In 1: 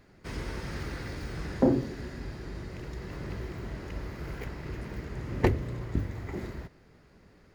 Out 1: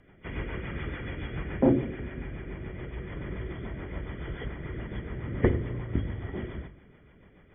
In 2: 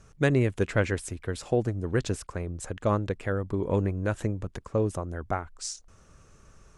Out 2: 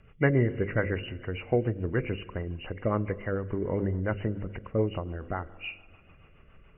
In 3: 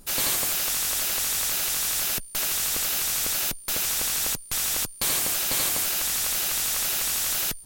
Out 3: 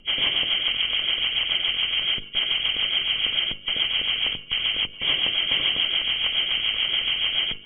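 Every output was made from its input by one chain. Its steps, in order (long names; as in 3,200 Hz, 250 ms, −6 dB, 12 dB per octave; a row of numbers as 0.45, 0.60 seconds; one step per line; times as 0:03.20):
hearing-aid frequency compression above 1,900 Hz 4 to 1
notch filter 2,600 Hz, Q 6.6
spring reverb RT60 2.2 s, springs 43 ms, chirp 25 ms, DRR 17.5 dB
rotating-speaker cabinet horn 7 Hz
hum removal 50.52 Hz, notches 11
normalise the peak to −9 dBFS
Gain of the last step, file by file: +3.5, +1.0, 0.0 decibels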